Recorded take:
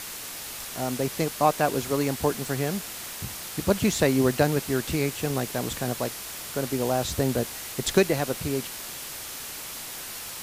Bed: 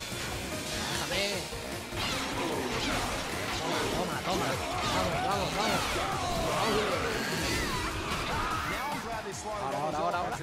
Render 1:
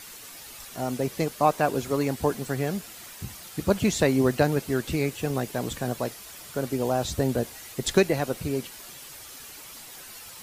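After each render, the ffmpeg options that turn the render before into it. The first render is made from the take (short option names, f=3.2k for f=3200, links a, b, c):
-af "afftdn=nr=9:nf=-38"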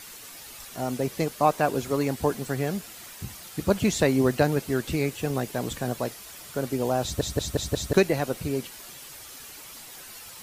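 -filter_complex "[0:a]asplit=6[a][b][c][d][e][f];[a]atrim=end=7.212[g];[b]atrim=start=7.028:end=7.212[h];[c]atrim=start=7.028:end=7.212[i];[d]atrim=start=7.028:end=7.212[j];[e]atrim=start=7.028:end=7.212[k];[f]atrim=start=7.928[l];[g][h]acrossfade=d=0.004:c1=hsin:c2=hsin[m];[m][i]acrossfade=d=0.004:c1=hsin:c2=hsin[n];[n][j]acrossfade=d=0.004:c1=hsin:c2=hsin[o];[o][k]acrossfade=d=0.004:c1=hsin:c2=hsin[p];[p][l]acrossfade=d=0.004:c1=hsin:c2=hsin"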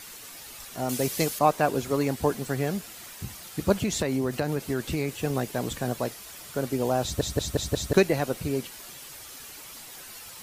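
-filter_complex "[0:a]asettb=1/sr,asplit=3[a][b][c];[a]atrim=end=0.894[d];[b]atrim=start=0.89:end=1.39,asetpts=PTS-STARTPTS,afade=t=in:d=0.004:c=qsin,afade=t=out:st=0.496:d=0.004:c=qsin,highshelf=f=3k:g=11[e];[c]atrim=start=1.386[f];[d][e]acrossfade=d=0.004:c1=hsin:c2=qsin[g];[g][f]acrossfade=d=0.004:c1=qsin:c2=hsin,asettb=1/sr,asplit=3[h][i][j];[h]atrim=end=3.724[k];[i]atrim=start=3.72:end=5.1,asetpts=PTS-STARTPTS,afade=t=in:d=0.004:c=qsin,afade=t=out:st=1.376:d=0.004:c=qsin,acompressor=threshold=-22dB:ratio=5:attack=3.2:release=140:knee=1:detection=peak[l];[j]atrim=start=5.096[m];[k][l]acrossfade=d=0.004:c1=hsin:c2=qsin[n];[n][m]acrossfade=d=0.004:c1=qsin:c2=hsin"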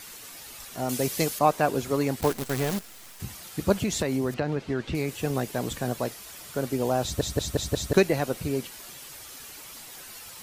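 -filter_complex "[0:a]asettb=1/sr,asplit=3[a][b][c];[a]atrim=end=2.214[d];[b]atrim=start=2.21:end=3.2,asetpts=PTS-STARTPTS,afade=t=in:d=0.004:c=qsin,afade=t=out:st=0.986:d=0.004:c=qsin,acrusher=bits=6:dc=4:mix=0:aa=0.000001[e];[c]atrim=start=3.196[f];[d][e]acrossfade=d=0.004:c1=hsin:c2=qsin[g];[g][f]acrossfade=d=0.004:c1=qsin:c2=hsin,asettb=1/sr,asplit=3[h][i][j];[h]atrim=end=4.344[k];[i]atrim=start=4.34:end=4.95,asetpts=PTS-STARTPTS,afade=t=in:d=0.004:c=qsin,afade=t=out:st=0.606:d=0.004:c=qsin,lowpass=3.8k[l];[j]atrim=start=4.946[m];[k][l]acrossfade=d=0.004:c1=hsin:c2=qsin[n];[n][m]acrossfade=d=0.004:c1=qsin:c2=hsin"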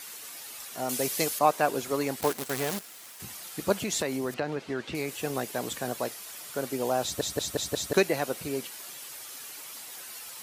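-af "highpass=f=400:p=1,equalizer=f=11k:t=o:w=0.77:g=2.5"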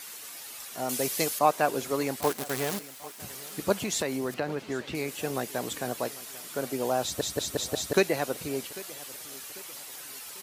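-af "aecho=1:1:795|1590|2385:0.106|0.0455|0.0196"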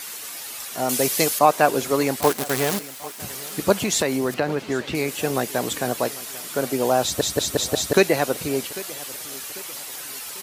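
-af "volume=8dB,alimiter=limit=-3dB:level=0:latency=1"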